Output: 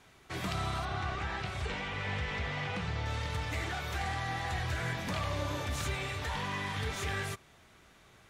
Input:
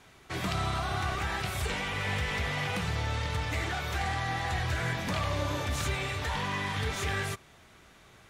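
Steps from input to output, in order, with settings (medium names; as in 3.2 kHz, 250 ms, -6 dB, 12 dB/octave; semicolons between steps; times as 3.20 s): 0.85–3.06 s: distance through air 90 m; trim -3.5 dB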